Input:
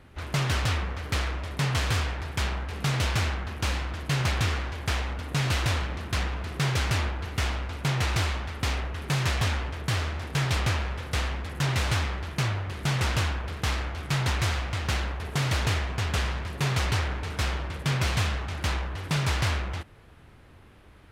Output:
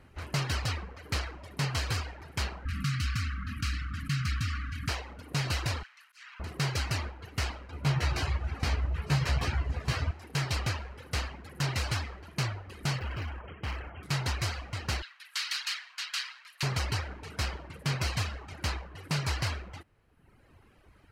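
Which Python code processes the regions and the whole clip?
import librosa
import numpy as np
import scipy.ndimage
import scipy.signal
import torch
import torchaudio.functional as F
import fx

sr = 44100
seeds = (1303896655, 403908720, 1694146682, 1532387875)

y = fx.chain(x, sr, fx.brickwall_bandstop(low_hz=300.0, high_hz=1100.0),
    fx.high_shelf(hz=2100.0, db=-5.5),
    fx.env_flatten(amount_pct=70), at=(2.65, 4.89))
y = fx.chain(y, sr, fx.highpass(hz=1300.0, slope=24),
    fx.auto_swell(attack_ms=245.0), at=(5.83, 6.4))
y = fx.chain(y, sr, fx.high_shelf(hz=4000.0, db=-6.5),
    fx.doubler(ms=14.0, db=-3),
    fx.echo_opening(ms=109, hz=200, octaves=2, feedback_pct=70, wet_db=-6), at=(7.71, 10.11))
y = fx.chain(y, sr, fx.brickwall_lowpass(high_hz=3300.0),
    fx.clip_hard(threshold_db=-26.0), at=(12.99, 14.03))
y = fx.chain(y, sr, fx.highpass(hz=1300.0, slope=24),
    fx.peak_eq(hz=3800.0, db=6.0, octaves=0.95), at=(15.02, 16.63))
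y = fx.dereverb_blind(y, sr, rt60_s=1.2)
y = fx.notch(y, sr, hz=3500.0, q=8.8)
y = fx.dynamic_eq(y, sr, hz=4600.0, q=2.2, threshold_db=-49.0, ratio=4.0, max_db=5)
y = y * 10.0 ** (-3.5 / 20.0)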